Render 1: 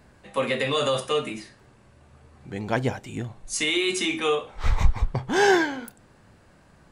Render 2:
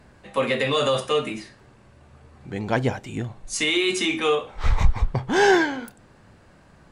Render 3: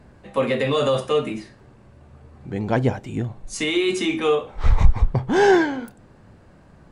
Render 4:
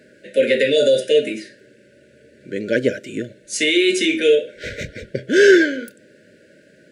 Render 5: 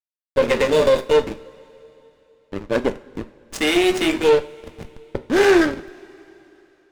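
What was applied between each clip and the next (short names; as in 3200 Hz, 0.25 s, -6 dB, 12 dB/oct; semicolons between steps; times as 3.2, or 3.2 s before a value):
high shelf 10000 Hz -8 dB; in parallel at -4 dB: soft clip -14 dBFS, distortion -14 dB; on the sum: gain -1.5 dB
tilt shelf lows +4 dB
FFT band-reject 640–1400 Hz; HPF 350 Hz 12 dB/oct; spectral gain 0.77–1.01, 1500–3400 Hz -8 dB; gain +7 dB
backlash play -15.5 dBFS; tube stage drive 13 dB, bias 0.65; two-slope reverb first 0.35 s, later 3.4 s, from -21 dB, DRR 9 dB; gain +3.5 dB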